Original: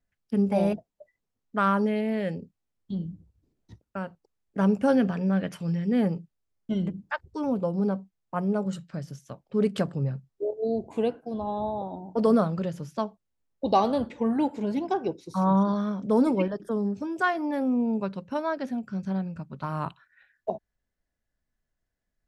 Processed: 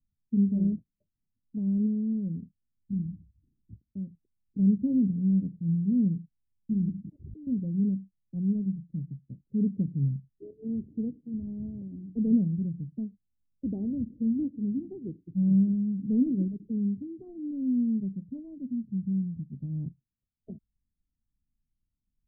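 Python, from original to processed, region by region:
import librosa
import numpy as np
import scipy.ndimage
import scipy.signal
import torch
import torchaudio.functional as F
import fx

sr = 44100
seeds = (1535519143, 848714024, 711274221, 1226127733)

y = fx.chain(x, sr, fx.overload_stage(gain_db=35.0),
    fx.highpass(hz=280.0, slope=6),
    fx.pre_swell(db_per_s=38.0), at=(7.04, 7.47))
y = fx.wiener(y, sr, points=41)
y = scipy.signal.sosfilt(scipy.signal.cheby2(4, 70, 1200.0, 'lowpass', fs=sr, output='sos'), y)
y = y * librosa.db_to_amplitude(1.5)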